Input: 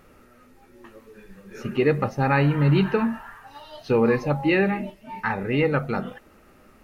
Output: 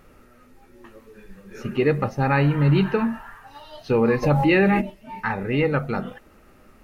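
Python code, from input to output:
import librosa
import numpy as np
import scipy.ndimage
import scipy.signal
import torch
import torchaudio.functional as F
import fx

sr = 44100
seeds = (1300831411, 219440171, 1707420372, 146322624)

y = fx.low_shelf(x, sr, hz=73.0, db=5.5)
y = fx.env_flatten(y, sr, amount_pct=70, at=(4.22, 4.8), fade=0.02)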